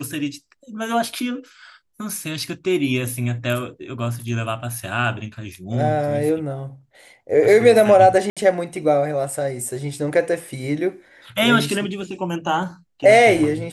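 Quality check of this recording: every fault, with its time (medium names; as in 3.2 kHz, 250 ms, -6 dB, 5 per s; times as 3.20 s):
8.30–8.37 s: dropout 66 ms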